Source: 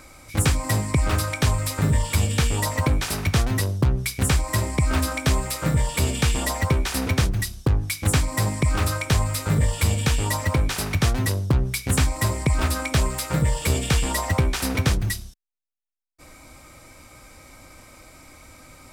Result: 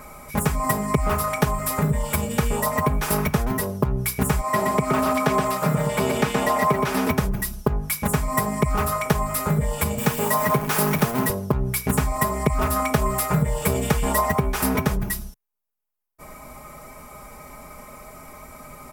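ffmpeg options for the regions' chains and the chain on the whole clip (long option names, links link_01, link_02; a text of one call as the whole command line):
ffmpeg -i in.wav -filter_complex "[0:a]asettb=1/sr,asplit=3[link_01][link_02][link_03];[link_01]atrim=end=4.414[link_04];[link_02]atrim=start=4.41:end=7.1,asetpts=PTS-STARTPTS,afade=type=in:duration=0.004:curve=qsin,afade=type=out:start_time=2.686:duration=0.004:curve=qsin,highpass=180,acrossover=split=5600[link_05][link_06];[link_06]acompressor=threshold=-40dB:ratio=4:attack=1:release=60[link_07];[link_05][link_07]amix=inputs=2:normalize=0,aecho=1:1:122:0.596,atrim=end_sample=118629[link_08];[link_03]atrim=start=7.096[link_09];[link_04][link_08]acrossfade=duration=0.004:curve1=hsin:curve2=qsin[link_10];[link_10][link_09]acrossfade=duration=0.004:curve1=qsin:curve2=hsin,asettb=1/sr,asplit=3[link_11][link_12][link_13];[link_11]atrim=end=9.984[link_14];[link_12]atrim=start=9.98:end=11.3,asetpts=PTS-STARTPTS,afade=type=in:duration=0.004:curve=qsin,afade=type=out:start_time=1.316:duration=0.004:curve=qsin,aeval=exprs='val(0)+0.5*0.0266*sgn(val(0))':channel_layout=same,highpass=frequency=120:width=0.5412,highpass=frequency=120:width=1.3066,acrusher=bits=6:dc=4:mix=0:aa=0.000001[link_15];[link_13]atrim=start=11.296[link_16];[link_14][link_15]acrossfade=duration=0.004:curve1=hsin:curve2=qsin[link_17];[link_17][link_16]acrossfade=duration=0.004:curve1=qsin:curve2=hsin,equalizer=frequency=125:width_type=o:width=1:gain=8,equalizer=frequency=500:width_type=o:width=1:gain=5,equalizer=frequency=1000:width_type=o:width=1:gain=7,equalizer=frequency=4000:width_type=o:width=1:gain=-8,equalizer=frequency=8000:width_type=o:width=1:gain=-5,equalizer=frequency=16000:width_type=o:width=1:gain=11,acompressor=threshold=-18dB:ratio=6,aecho=1:1:4.8:0.87" out.wav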